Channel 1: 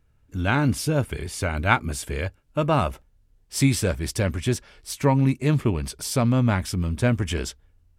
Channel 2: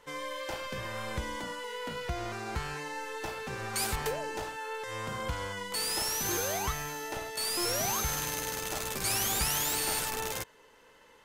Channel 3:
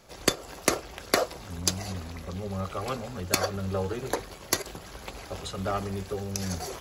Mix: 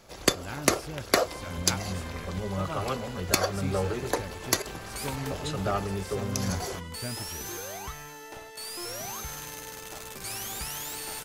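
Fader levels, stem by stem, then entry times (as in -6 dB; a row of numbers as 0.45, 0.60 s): -16.5, -6.0, +1.0 dB; 0.00, 1.20, 0.00 s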